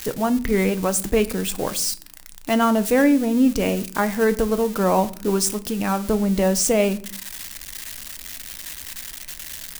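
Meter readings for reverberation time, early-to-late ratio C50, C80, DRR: 0.50 s, 18.5 dB, 22.0 dB, 11.0 dB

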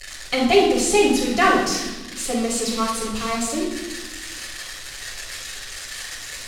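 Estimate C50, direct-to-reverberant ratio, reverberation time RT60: 2.5 dB, -6.0 dB, 1.1 s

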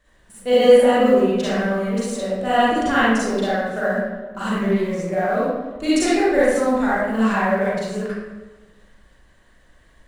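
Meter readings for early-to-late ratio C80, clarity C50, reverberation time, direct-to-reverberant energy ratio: 0.0 dB, -5.5 dB, 1.3 s, -10.5 dB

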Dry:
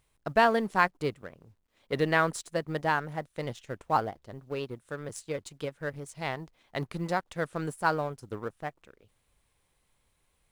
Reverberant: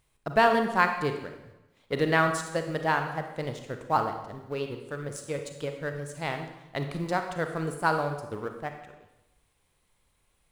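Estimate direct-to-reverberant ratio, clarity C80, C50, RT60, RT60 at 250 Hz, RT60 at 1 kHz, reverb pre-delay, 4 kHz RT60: 5.5 dB, 9.0 dB, 6.5 dB, 0.95 s, 0.95 s, 0.90 s, 31 ms, 0.90 s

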